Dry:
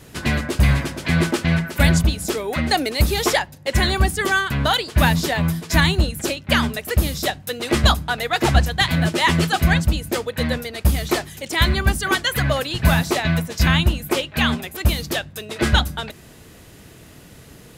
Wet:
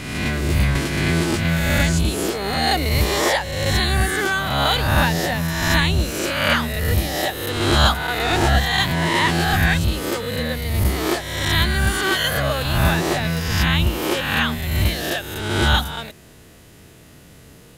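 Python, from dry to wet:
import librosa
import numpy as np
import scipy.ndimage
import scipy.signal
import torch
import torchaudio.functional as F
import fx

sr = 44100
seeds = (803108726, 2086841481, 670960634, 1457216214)

y = fx.spec_swells(x, sr, rise_s=1.28)
y = fx.band_squash(y, sr, depth_pct=70, at=(0.75, 2.3))
y = y * 10.0 ** (-4.5 / 20.0)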